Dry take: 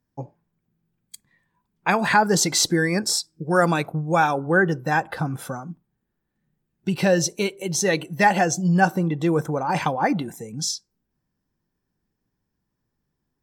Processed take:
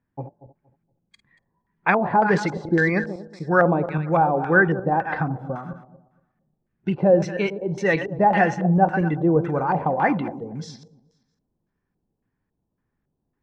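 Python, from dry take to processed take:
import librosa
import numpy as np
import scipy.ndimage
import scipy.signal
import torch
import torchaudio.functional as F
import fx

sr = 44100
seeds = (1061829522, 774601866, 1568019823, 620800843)

y = fx.reverse_delay_fb(x, sr, ms=117, feedback_pct=47, wet_db=-10.5)
y = fx.filter_lfo_lowpass(y, sr, shape='square', hz=1.8, low_hz=690.0, high_hz=2000.0, q=1.4)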